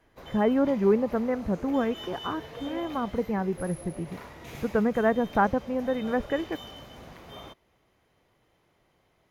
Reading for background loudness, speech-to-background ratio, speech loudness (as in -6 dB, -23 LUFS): -43.0 LUFS, 15.5 dB, -27.5 LUFS